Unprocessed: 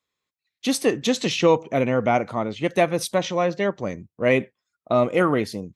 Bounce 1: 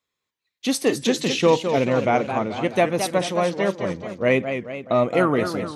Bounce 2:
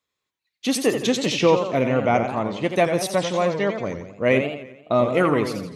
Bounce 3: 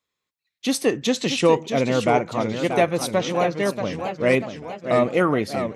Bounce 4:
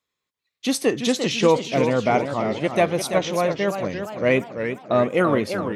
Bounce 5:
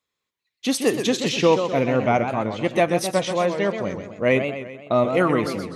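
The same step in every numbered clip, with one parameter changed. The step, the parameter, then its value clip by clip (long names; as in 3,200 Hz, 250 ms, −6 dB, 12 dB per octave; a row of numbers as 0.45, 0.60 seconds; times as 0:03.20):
feedback echo with a swinging delay time, delay time: 215, 86, 637, 342, 128 milliseconds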